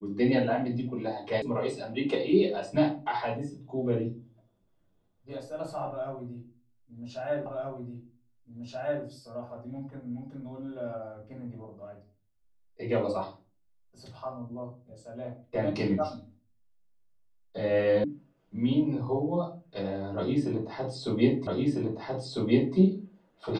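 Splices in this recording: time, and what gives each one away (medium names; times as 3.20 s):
1.42 s: sound stops dead
7.46 s: repeat of the last 1.58 s
18.04 s: sound stops dead
21.47 s: repeat of the last 1.3 s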